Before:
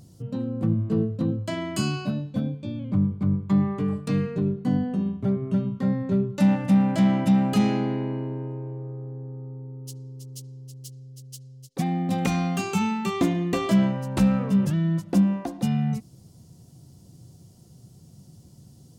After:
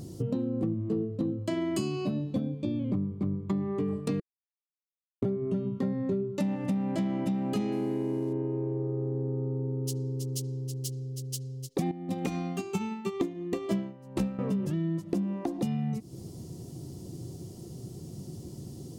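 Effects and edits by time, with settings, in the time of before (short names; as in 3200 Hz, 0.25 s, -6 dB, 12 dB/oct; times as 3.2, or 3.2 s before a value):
4.2–5.22 mute
7.72–8.33 CVSD 64 kbps
11.91–14.39 upward expander 2.5:1, over -30 dBFS
whole clip: bell 360 Hz +11.5 dB 0.77 oct; notch 1500 Hz, Q 10; compressor 12:1, threshold -33 dBFS; gain +6 dB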